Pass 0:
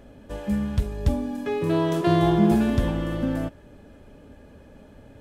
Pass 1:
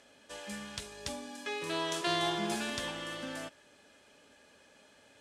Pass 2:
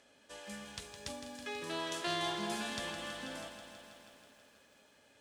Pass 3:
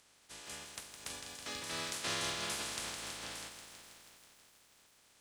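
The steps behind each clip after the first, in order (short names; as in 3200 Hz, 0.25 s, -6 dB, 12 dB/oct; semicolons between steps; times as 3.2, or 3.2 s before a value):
weighting filter ITU-R 468; gain -6.5 dB
lo-fi delay 0.162 s, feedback 80%, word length 10-bit, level -9.5 dB; gain -4.5 dB
spectral limiter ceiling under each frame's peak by 23 dB; gain -1 dB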